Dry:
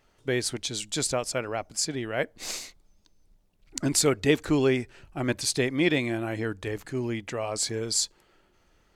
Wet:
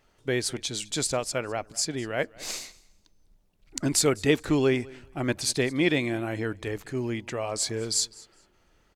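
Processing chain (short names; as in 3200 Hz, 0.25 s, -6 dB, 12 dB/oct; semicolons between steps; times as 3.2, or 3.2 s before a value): feedback echo 0.205 s, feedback 19%, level -22.5 dB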